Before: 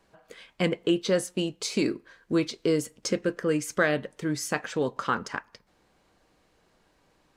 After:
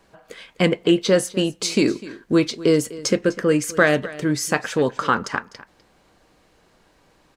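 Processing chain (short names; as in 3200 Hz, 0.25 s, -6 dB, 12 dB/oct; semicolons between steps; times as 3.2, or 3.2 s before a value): echo 0.251 s -18 dB; gain +7.5 dB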